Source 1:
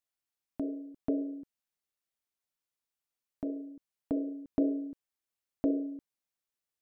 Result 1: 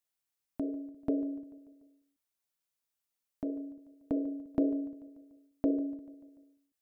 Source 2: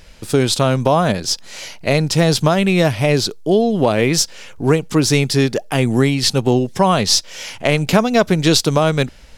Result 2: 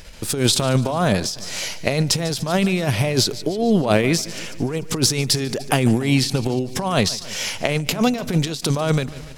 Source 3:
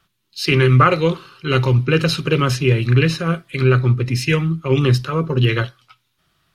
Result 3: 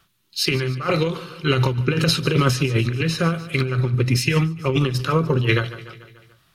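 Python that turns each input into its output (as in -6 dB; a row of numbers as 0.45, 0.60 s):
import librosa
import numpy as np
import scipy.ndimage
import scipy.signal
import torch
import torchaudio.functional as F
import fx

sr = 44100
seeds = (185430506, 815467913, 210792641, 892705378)

p1 = fx.high_shelf(x, sr, hz=6900.0, db=5.0)
p2 = fx.over_compress(p1, sr, threshold_db=-17.0, ratio=-0.5)
p3 = p2 + fx.echo_feedback(p2, sr, ms=146, feedback_pct=58, wet_db=-18, dry=0)
y = fx.end_taper(p3, sr, db_per_s=110.0)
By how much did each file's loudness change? 0.0, -4.5, -3.5 LU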